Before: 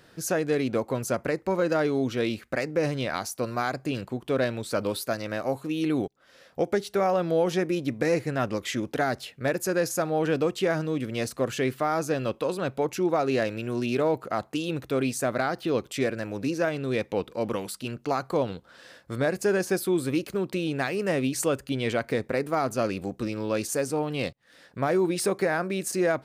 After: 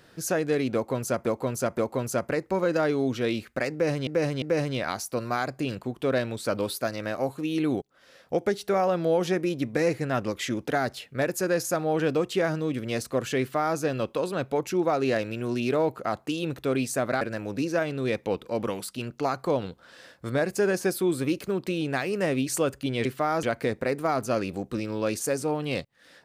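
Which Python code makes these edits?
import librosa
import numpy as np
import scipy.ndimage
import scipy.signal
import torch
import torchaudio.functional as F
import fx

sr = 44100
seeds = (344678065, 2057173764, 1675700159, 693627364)

y = fx.edit(x, sr, fx.repeat(start_s=0.74, length_s=0.52, count=3),
    fx.repeat(start_s=2.68, length_s=0.35, count=3),
    fx.duplicate(start_s=11.66, length_s=0.38, to_s=21.91),
    fx.cut(start_s=15.47, length_s=0.6), tone=tone)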